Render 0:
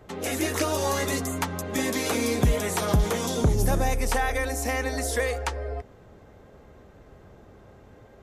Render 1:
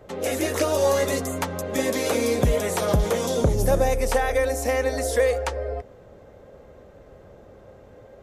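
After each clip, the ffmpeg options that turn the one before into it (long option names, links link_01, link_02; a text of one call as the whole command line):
ffmpeg -i in.wav -af "equalizer=frequency=540:width=3.2:gain=10" out.wav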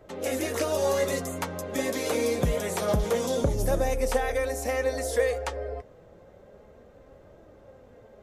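ffmpeg -i in.wav -af "flanger=delay=3:depth=4.2:regen=67:speed=0.27:shape=triangular" out.wav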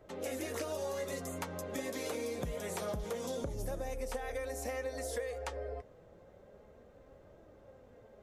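ffmpeg -i in.wav -af "acompressor=threshold=-29dB:ratio=6,volume=-6dB" out.wav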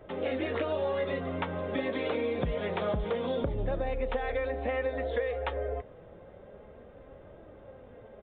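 ffmpeg -i in.wav -af "aresample=8000,aresample=44100,volume=7.5dB" out.wav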